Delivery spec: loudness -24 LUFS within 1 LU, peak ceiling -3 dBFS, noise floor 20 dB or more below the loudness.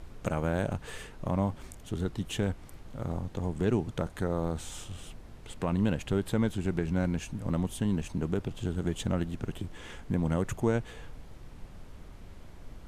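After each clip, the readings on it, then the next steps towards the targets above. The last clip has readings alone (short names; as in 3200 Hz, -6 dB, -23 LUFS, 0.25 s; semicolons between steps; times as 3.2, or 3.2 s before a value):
noise floor -48 dBFS; noise floor target -52 dBFS; loudness -32.0 LUFS; peak -15.0 dBFS; loudness target -24.0 LUFS
-> noise print and reduce 6 dB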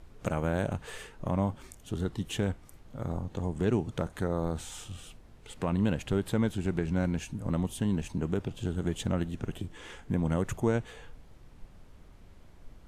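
noise floor -54 dBFS; loudness -32.5 LUFS; peak -15.0 dBFS; loudness target -24.0 LUFS
-> gain +8.5 dB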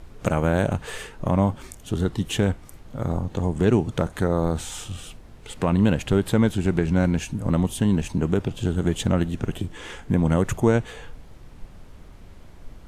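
loudness -24.0 LUFS; peak -6.5 dBFS; noise floor -45 dBFS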